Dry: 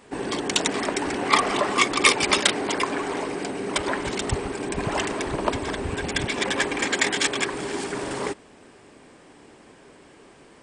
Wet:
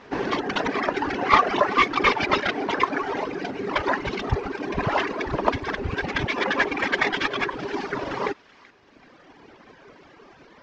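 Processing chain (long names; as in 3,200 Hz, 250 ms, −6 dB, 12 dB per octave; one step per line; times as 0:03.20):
variable-slope delta modulation 32 kbit/s
high-shelf EQ 3,700 Hz −8 dB
reverb reduction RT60 1.9 s
parametric band 1,400 Hz +5 dB 2 octaves
delay with a high-pass on its return 381 ms, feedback 35%, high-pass 1,700 Hz, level −17 dB
level +3 dB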